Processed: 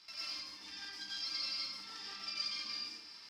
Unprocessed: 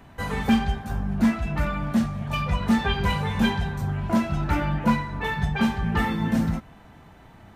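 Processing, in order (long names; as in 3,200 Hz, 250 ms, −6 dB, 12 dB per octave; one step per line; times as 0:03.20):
downward compressor 3 to 1, threshold −38 dBFS, peak gain reduction 16.5 dB
tempo change 1.7×
soft clipping −32 dBFS, distortion −16 dB
resonant band-pass 3,700 Hz, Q 12
dense smooth reverb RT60 1.2 s, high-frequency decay 0.9×, pre-delay 105 ms, DRR −7.5 dB
wrong playback speed 33 rpm record played at 45 rpm
level +16 dB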